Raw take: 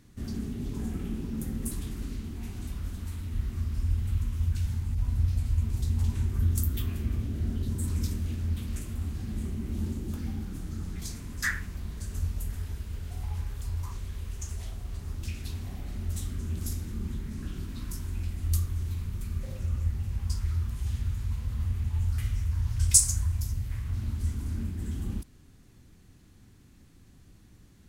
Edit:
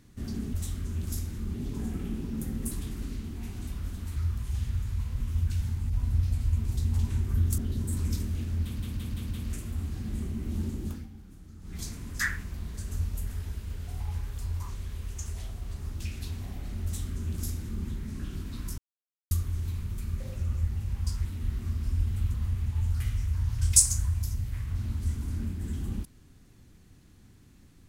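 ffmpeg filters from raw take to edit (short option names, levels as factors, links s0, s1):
-filter_complex "[0:a]asplit=16[s0][s1][s2][s3][s4][s5][s6][s7][s8][s9][s10][s11][s12][s13][s14][s15];[s0]atrim=end=0.542[s16];[s1]atrim=start=16.078:end=17.082[s17];[s2]atrim=start=0.538:end=3.162[s18];[s3]atrim=start=20.478:end=21.522[s19];[s4]atrim=start=4.248:end=6.632[s20];[s5]atrim=start=7.488:end=8.712[s21];[s6]atrim=start=8.538:end=8.712[s22];[s7]atrim=start=8.538:end=8.712[s23];[s8]atrim=start=8.538:end=8.712[s24];[s9]atrim=start=8.538:end=10.3,asetpts=PTS-STARTPTS,afade=t=out:st=1.572:d=0.19:silence=0.237137[s25];[s10]atrim=start=10.3:end=10.84,asetpts=PTS-STARTPTS,volume=0.237[s26];[s11]atrim=start=10.84:end=18.01,asetpts=PTS-STARTPTS,afade=t=in:d=0.19:silence=0.237137,afade=t=out:st=7.166:d=0.004:c=hsin[s27];[s12]atrim=start=18.01:end=18.54,asetpts=PTS-STARTPTS,volume=0[s28];[s13]atrim=start=18.54:end=20.482,asetpts=PTS-STARTPTS,afade=t=in:d=0.004:c=hsin[s29];[s14]atrim=start=3.158:end=4.252[s30];[s15]atrim=start=21.518[s31];[s16][s17]acrossfade=d=0.004:c1=hsin:c2=hsin[s32];[s32][s18]acrossfade=d=0.004:c1=hsin:c2=hsin[s33];[s33][s19]acrossfade=d=0.004:c1=hsin:c2=hsin[s34];[s34][s20]acrossfade=d=0.004:c1=hsin:c2=hsin[s35];[s35][s21]acrossfade=d=0.004:c1=hsin:c2=hsin[s36];[s36][s22]acrossfade=d=0.004:c1=hsin:c2=hsin[s37];[s37][s23]acrossfade=d=0.004:c1=hsin:c2=hsin[s38];[s38][s24]acrossfade=d=0.004:c1=hsin:c2=hsin[s39];[s25][s26][s27][s28][s29]concat=n=5:v=0:a=1[s40];[s39][s40]acrossfade=d=0.004:c1=hsin:c2=hsin[s41];[s41][s30]acrossfade=d=0.004:c1=hsin:c2=hsin[s42];[s42][s31]acrossfade=d=0.004:c1=hsin:c2=hsin"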